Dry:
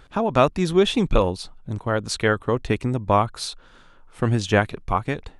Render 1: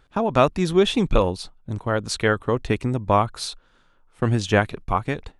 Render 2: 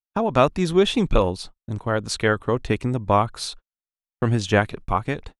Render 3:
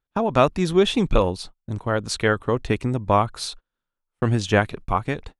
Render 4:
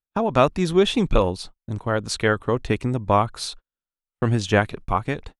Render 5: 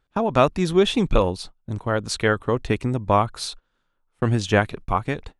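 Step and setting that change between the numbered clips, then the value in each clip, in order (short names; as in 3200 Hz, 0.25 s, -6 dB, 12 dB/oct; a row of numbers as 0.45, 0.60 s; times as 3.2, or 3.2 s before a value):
gate, range: -9, -60, -35, -48, -22 dB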